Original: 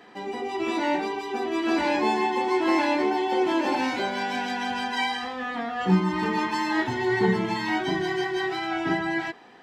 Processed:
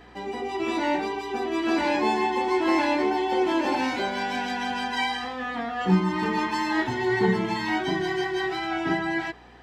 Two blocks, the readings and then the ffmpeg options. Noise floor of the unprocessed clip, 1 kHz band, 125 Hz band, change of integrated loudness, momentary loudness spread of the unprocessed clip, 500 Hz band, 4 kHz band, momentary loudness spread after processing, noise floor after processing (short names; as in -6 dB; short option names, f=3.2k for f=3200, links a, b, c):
-36 dBFS, 0.0 dB, 0.0 dB, 0.0 dB, 7 LU, 0.0 dB, 0.0 dB, 7 LU, -36 dBFS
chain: -af "aeval=exprs='val(0)+0.002*(sin(2*PI*60*n/s)+sin(2*PI*2*60*n/s)/2+sin(2*PI*3*60*n/s)/3+sin(2*PI*4*60*n/s)/4+sin(2*PI*5*60*n/s)/5)':c=same"